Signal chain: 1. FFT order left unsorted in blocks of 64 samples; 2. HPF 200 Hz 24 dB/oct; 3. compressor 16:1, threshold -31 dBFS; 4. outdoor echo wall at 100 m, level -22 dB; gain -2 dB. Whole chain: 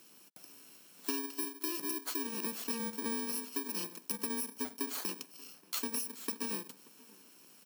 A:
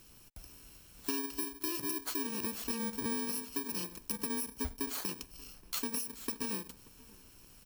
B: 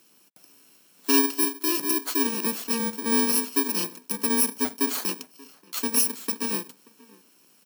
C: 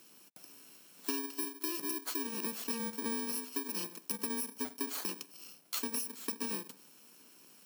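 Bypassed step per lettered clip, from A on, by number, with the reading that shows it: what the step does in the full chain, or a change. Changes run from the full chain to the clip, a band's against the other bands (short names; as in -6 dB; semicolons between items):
2, 125 Hz band +6.5 dB; 3, mean gain reduction 9.5 dB; 4, echo-to-direct -24.0 dB to none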